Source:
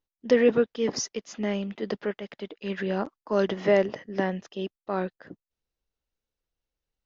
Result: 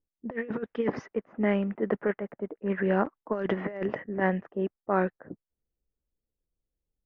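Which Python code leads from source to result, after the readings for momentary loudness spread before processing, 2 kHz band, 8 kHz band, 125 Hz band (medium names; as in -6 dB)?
13 LU, -0.5 dB, no reading, +1.5 dB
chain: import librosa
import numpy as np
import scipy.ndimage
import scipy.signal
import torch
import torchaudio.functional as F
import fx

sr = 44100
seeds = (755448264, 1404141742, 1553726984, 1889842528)

y = fx.env_lowpass(x, sr, base_hz=410.0, full_db=-19.5)
y = fx.over_compress(y, sr, threshold_db=-26.0, ratio=-0.5)
y = fx.high_shelf_res(y, sr, hz=2900.0, db=-14.0, q=1.5)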